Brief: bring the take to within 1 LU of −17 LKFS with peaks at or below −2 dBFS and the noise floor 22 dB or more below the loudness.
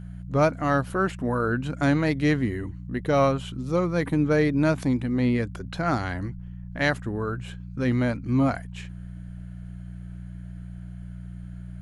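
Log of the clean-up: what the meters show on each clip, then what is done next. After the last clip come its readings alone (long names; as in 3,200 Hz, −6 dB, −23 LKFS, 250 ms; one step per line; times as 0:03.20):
mains hum 60 Hz; hum harmonics up to 180 Hz; level of the hum −36 dBFS; integrated loudness −25.0 LKFS; sample peak −9.0 dBFS; target loudness −17.0 LKFS
→ hum removal 60 Hz, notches 3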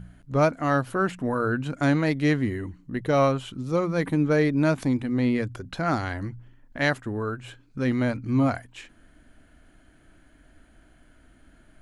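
mains hum none found; integrated loudness −25.5 LKFS; sample peak −9.0 dBFS; target loudness −17.0 LKFS
→ level +8.5 dB
brickwall limiter −2 dBFS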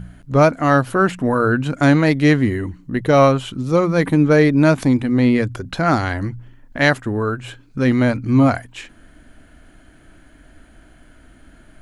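integrated loudness −17.0 LKFS; sample peak −2.0 dBFS; background noise floor −49 dBFS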